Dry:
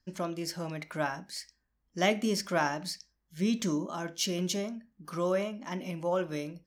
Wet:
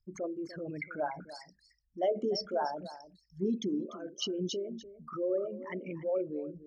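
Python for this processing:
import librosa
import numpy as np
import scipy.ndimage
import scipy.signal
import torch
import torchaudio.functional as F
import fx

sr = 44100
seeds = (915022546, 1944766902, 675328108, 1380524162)

p1 = fx.envelope_sharpen(x, sr, power=3.0)
p2 = fx.dynamic_eq(p1, sr, hz=2300.0, q=3.5, threshold_db=-58.0, ratio=4.0, max_db=6)
p3 = fx.rider(p2, sr, range_db=3, speed_s=2.0)
p4 = p2 + (p3 * 10.0 ** (0.5 / 20.0))
p5 = fx.env_phaser(p4, sr, low_hz=350.0, high_hz=2300.0, full_db=-19.5)
p6 = p5 + 10.0 ** (-15.0 / 20.0) * np.pad(p5, (int(295 * sr / 1000.0), 0))[:len(p5)]
y = p6 * 10.0 ** (-8.0 / 20.0)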